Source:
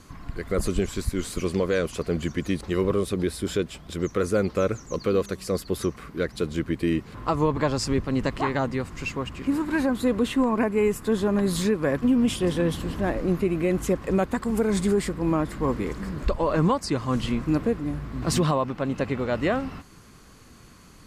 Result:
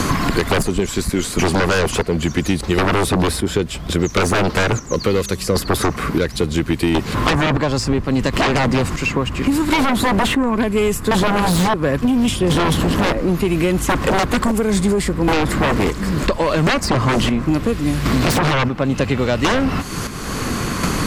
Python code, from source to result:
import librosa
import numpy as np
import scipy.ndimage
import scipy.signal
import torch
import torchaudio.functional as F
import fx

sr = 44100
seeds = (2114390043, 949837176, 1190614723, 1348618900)

y = fx.chopper(x, sr, hz=0.72, depth_pct=65, duty_pct=45)
y = fx.fold_sine(y, sr, drive_db=12, ceiling_db=-12.5)
y = fx.band_squash(y, sr, depth_pct=100)